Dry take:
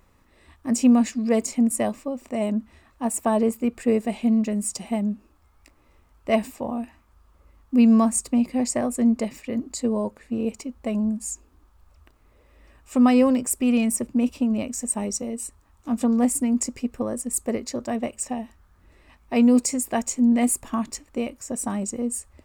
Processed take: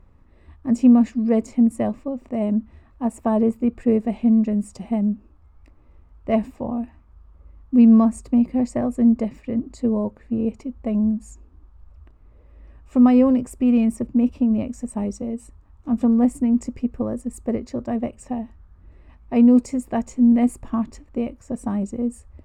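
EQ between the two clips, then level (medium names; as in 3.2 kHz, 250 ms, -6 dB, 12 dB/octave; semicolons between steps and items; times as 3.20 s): low-pass 1.2 kHz 6 dB/octave; bass shelf 180 Hz +10 dB; 0.0 dB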